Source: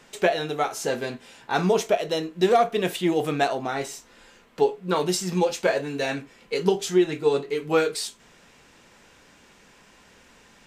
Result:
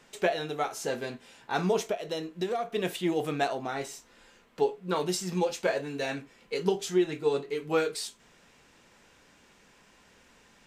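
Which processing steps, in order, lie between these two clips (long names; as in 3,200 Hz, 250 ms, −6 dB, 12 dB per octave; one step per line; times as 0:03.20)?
0:01.91–0:02.73: downward compressor 4 to 1, threshold −23 dBFS, peak gain reduction 8 dB
level −5.5 dB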